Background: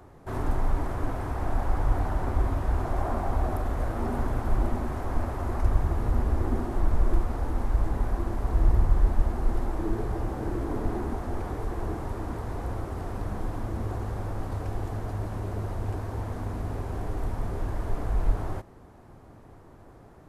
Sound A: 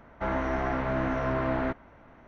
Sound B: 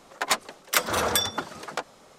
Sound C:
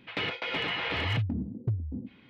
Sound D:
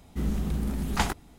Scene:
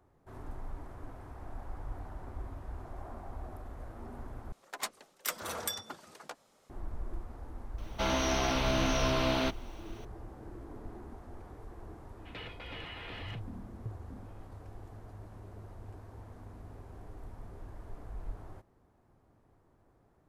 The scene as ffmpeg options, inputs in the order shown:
-filter_complex "[0:a]volume=0.15[s0];[2:a]highshelf=f=8900:g=8[s1];[1:a]aexciter=amount=15.4:drive=3.4:freq=2800[s2];[3:a]bandreject=f=2200:w=27[s3];[s0]asplit=2[s4][s5];[s4]atrim=end=4.524[s6];[s1]atrim=end=2.18,asetpts=PTS-STARTPTS,volume=0.188[s7];[s5]atrim=start=6.696[s8];[s2]atrim=end=2.27,asetpts=PTS-STARTPTS,volume=0.794,afade=t=in:d=0.004:c=hsin,afade=t=out:st=2.266:d=0.004:c=hsin,adelay=343098S[s9];[s3]atrim=end=2.29,asetpts=PTS-STARTPTS,volume=0.211,afade=t=in:d=0.004:c=hsin,afade=t=out:st=2.286:d=0.004:c=hsin,adelay=12180[s10];[s6][s7]acrossfade=d=0.004:c1=hsin:c2=hsin[s11];[s11][s8]acrossfade=d=0.004:c1=hsin:c2=hsin[s12];[s12][s9][s10]amix=inputs=3:normalize=0"

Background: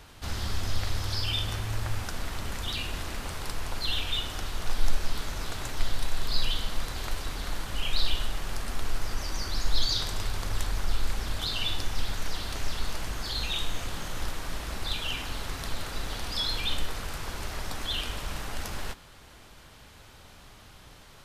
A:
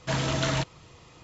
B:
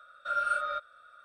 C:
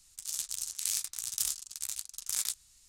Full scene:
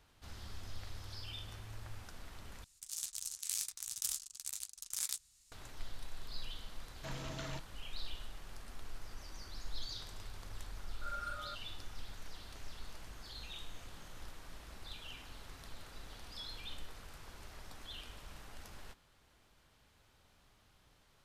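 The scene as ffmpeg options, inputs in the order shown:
-filter_complex "[0:a]volume=0.141[s0];[2:a]volume=15,asoftclip=hard,volume=0.0668[s1];[s0]asplit=2[s2][s3];[s2]atrim=end=2.644[s4];[3:a]atrim=end=2.88,asetpts=PTS-STARTPTS,volume=0.501[s5];[s3]atrim=start=5.516[s6];[1:a]atrim=end=1.23,asetpts=PTS-STARTPTS,volume=0.133,afade=t=in:d=0.004:c=hsin,afade=t=out:st=1.226:d=0.004:c=hsin,adelay=6960[s7];[s1]atrim=end=1.24,asetpts=PTS-STARTPTS,volume=0.211,afade=t=in:d=0.004:c=hsin,afade=t=out:st=1.236:d=0.004:c=hsin,adelay=10760[s8];[s4][s5]acrossfade=d=0.004:c1=hsin:c2=hsin[s9];[s9][s6]acrossfade=d=0.004:c1=hsin:c2=hsin[s10];[s10][s7][s8]amix=inputs=3:normalize=0"

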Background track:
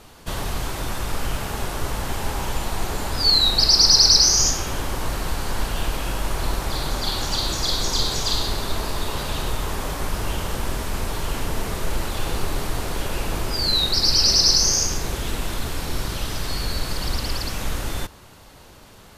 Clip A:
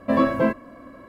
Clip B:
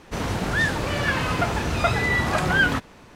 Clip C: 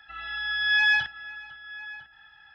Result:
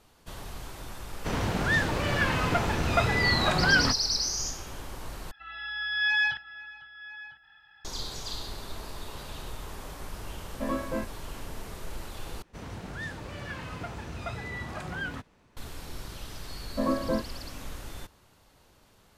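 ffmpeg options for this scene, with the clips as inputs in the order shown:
-filter_complex "[2:a]asplit=2[s0][s1];[1:a]asplit=2[s2][s3];[0:a]volume=0.2[s4];[s0]equalizer=f=12000:t=o:w=0.77:g=-7.5[s5];[s1]lowshelf=f=200:g=4[s6];[s3]lowpass=1400[s7];[s4]asplit=3[s8][s9][s10];[s8]atrim=end=5.314[s11];[3:a]atrim=end=2.54,asetpts=PTS-STARTPTS,volume=0.631[s12];[s9]atrim=start=7.846:end=12.424[s13];[s6]atrim=end=3.15,asetpts=PTS-STARTPTS,volume=0.158[s14];[s10]atrim=start=15.566[s15];[s5]atrim=end=3.15,asetpts=PTS-STARTPTS,volume=0.708,afade=t=in:d=0.004:c=hsin,afade=t=out:st=3.146:d=0.004:c=hsin,adelay=1130[s16];[s2]atrim=end=1.08,asetpts=PTS-STARTPTS,volume=0.251,afade=t=in:d=0.004:c=hsin,afade=t=out:st=1.076:d=0.004:c=hsin,adelay=10520[s17];[s7]atrim=end=1.08,asetpts=PTS-STARTPTS,volume=0.398,afade=t=in:d=0.004:c=hsin,afade=t=out:st=1.076:d=0.004:c=hsin,adelay=16690[s18];[s11][s12]acrossfade=d=0.004:c1=hsin:c2=hsin[s19];[s19][s13]acrossfade=d=0.004:c1=hsin:c2=hsin[s20];[s20][s14]acrossfade=d=0.004:c1=hsin:c2=hsin[s21];[s21][s15]acrossfade=d=0.004:c1=hsin:c2=hsin[s22];[s22][s16][s17][s18]amix=inputs=4:normalize=0"

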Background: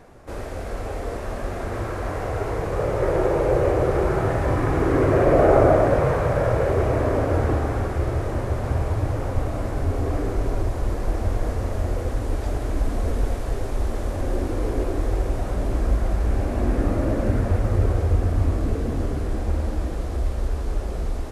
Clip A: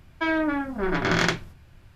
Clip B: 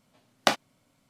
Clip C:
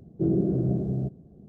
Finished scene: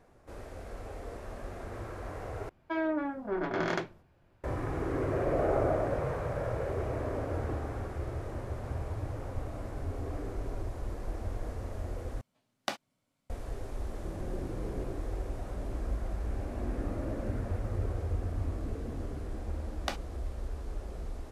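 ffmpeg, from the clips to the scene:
-filter_complex "[2:a]asplit=2[s0][s1];[0:a]volume=0.224[s2];[1:a]equalizer=f=530:t=o:w=2.9:g=14.5[s3];[3:a]acompressor=threshold=0.0158:ratio=6:attack=3.2:release=140:knee=1:detection=peak[s4];[s2]asplit=3[s5][s6][s7];[s5]atrim=end=2.494[s8];[s3]atrim=end=1.95,asetpts=PTS-STARTPTS,volume=0.126[s9];[s6]atrim=start=4.436:end=12.214[s10];[s0]atrim=end=1.09,asetpts=PTS-STARTPTS,volume=0.251[s11];[s7]atrim=start=13.296[s12];[s4]atrim=end=1.48,asetpts=PTS-STARTPTS,volume=0.473,afade=t=in:d=0.004:c=hsin,afade=t=out:st=1.476:d=0.004:c=hsin,adelay=13850[s13];[s1]atrim=end=1.09,asetpts=PTS-STARTPTS,volume=0.224,afade=t=in:d=0.004:c=hsin,afade=t=out:st=1.086:d=0.004:c=hsin,adelay=19410[s14];[s8][s9]acrossfade=d=0.004:c1=hsin:c2=hsin[s15];[s15][s10]acrossfade=d=0.004:c1=hsin:c2=hsin[s16];[s16][s11]acrossfade=d=0.004:c1=hsin:c2=hsin[s17];[s17][s12]acrossfade=d=0.004:c1=hsin:c2=hsin[s18];[s18][s13][s14]amix=inputs=3:normalize=0"

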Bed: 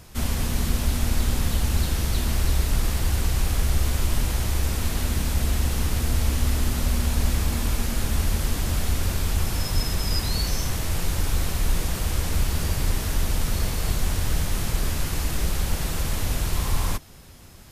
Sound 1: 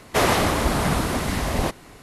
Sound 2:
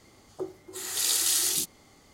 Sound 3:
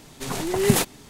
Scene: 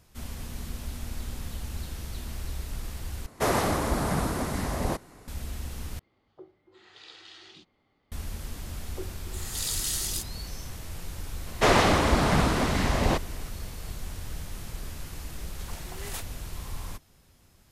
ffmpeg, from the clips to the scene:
-filter_complex "[1:a]asplit=2[s0][s1];[2:a]asplit=2[s2][s3];[0:a]volume=0.224[s4];[s0]equalizer=f=2900:t=o:w=1.3:g=-6.5[s5];[s2]lowpass=f=3600:w=0.5412,lowpass=f=3600:w=1.3066[s6];[s3]acontrast=86[s7];[s1]lowpass=7300[s8];[3:a]highpass=700[s9];[s4]asplit=3[s10][s11][s12];[s10]atrim=end=3.264[s13];[s5]atrim=end=2.02,asetpts=PTS-STARTPTS,volume=0.562[s14];[s11]atrim=start=5.276:end=5.994[s15];[s6]atrim=end=2.13,asetpts=PTS-STARTPTS,volume=0.211[s16];[s12]atrim=start=8.116[s17];[s7]atrim=end=2.13,asetpts=PTS-STARTPTS,volume=0.237,afade=t=in:d=0.004:c=hsin,afade=t=out:st=2.126:d=0.004:c=hsin,adelay=378378S[s18];[s8]atrim=end=2.02,asetpts=PTS-STARTPTS,volume=0.891,afade=t=in:d=0.004:c=hsin,afade=t=out:st=2.016:d=0.004:c=hsin,adelay=11470[s19];[s9]atrim=end=1.09,asetpts=PTS-STARTPTS,volume=0.188,afade=t=in:d=0.004:c=hsin,afade=t=out:st=1.086:d=0.004:c=hsin,adelay=15380[s20];[s13][s14]acrossfade=d=0.004:c1=hsin:c2=hsin[s21];[s21][s15]acrossfade=d=0.004:c1=hsin:c2=hsin[s22];[s22][s16]acrossfade=d=0.004:c1=hsin:c2=hsin[s23];[s23][s17]acrossfade=d=0.004:c1=hsin:c2=hsin[s24];[s24][s18][s19][s20]amix=inputs=4:normalize=0"

